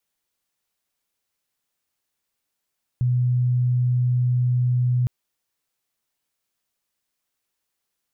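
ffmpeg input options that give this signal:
-f lavfi -i "aevalsrc='0.141*sin(2*PI*124*t)':d=2.06:s=44100"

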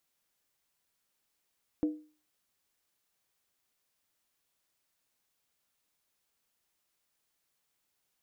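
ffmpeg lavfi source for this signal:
-f lavfi -i "aevalsrc='0.0708*pow(10,-3*t/0.38)*sin(2*PI*305*t)+0.0178*pow(10,-3*t/0.301)*sin(2*PI*486.2*t)+0.00447*pow(10,-3*t/0.26)*sin(2*PI*651.5*t)+0.00112*pow(10,-3*t/0.251)*sin(2*PI*700.3*t)+0.000282*pow(10,-3*t/0.233)*sin(2*PI*809.2*t)':d=0.63:s=44100"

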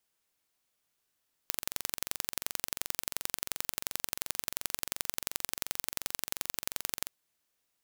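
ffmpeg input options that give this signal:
-f lavfi -i "aevalsrc='0.708*eq(mod(n,1934),0)*(0.5+0.5*eq(mod(n,3868),0))':d=5.6:s=44100"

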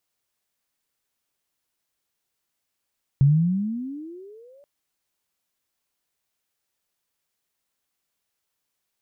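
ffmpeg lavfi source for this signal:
-f lavfi -i "aevalsrc='pow(10,(-11.5-38*t/1.43)/20)*sin(2*PI*134*1.43/(25.5*log(2)/12)*(exp(25.5*log(2)/12*t/1.43)-1))':d=1.43:s=44100"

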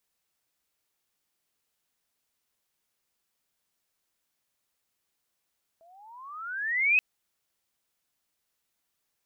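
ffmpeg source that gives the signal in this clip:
-f lavfi -i "aevalsrc='pow(10,(-17.5+37*(t/1.18-1))/20)*sin(2*PI*648*1.18/(24*log(2)/12)*(exp(24*log(2)/12*t/1.18)-1))':d=1.18:s=44100"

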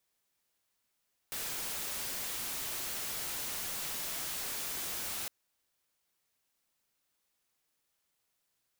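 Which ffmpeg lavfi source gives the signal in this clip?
-f lavfi -i "anoisesrc=c=white:a=0.0218:d=3.96:r=44100:seed=1"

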